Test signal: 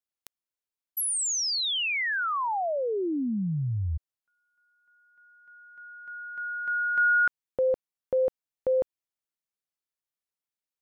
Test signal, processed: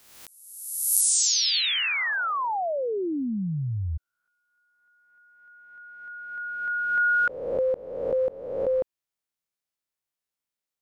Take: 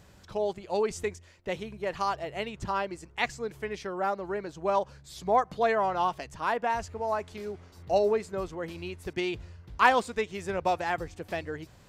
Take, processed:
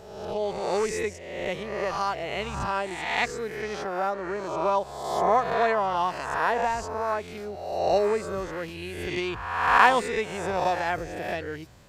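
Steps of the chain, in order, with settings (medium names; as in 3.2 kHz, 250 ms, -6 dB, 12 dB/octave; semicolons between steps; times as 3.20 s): reverse spectral sustain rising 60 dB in 1.10 s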